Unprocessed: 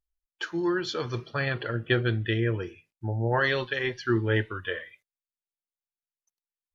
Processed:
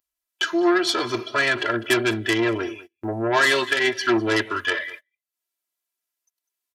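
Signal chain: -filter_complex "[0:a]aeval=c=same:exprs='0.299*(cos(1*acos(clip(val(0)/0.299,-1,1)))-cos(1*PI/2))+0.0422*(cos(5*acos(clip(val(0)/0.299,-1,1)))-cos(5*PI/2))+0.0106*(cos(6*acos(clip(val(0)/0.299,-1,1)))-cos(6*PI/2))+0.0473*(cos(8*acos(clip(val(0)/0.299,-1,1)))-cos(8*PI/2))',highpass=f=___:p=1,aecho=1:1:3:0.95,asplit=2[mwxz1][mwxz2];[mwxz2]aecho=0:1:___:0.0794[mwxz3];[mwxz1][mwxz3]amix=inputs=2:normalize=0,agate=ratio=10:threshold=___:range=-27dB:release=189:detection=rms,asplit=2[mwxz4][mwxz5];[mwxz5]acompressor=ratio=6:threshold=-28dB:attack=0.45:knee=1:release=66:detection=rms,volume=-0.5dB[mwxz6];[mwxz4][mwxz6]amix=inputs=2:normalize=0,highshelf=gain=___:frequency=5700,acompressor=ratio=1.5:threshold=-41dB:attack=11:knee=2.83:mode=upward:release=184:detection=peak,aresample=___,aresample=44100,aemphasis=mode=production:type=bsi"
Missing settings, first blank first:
120, 200, -40dB, -10.5, 32000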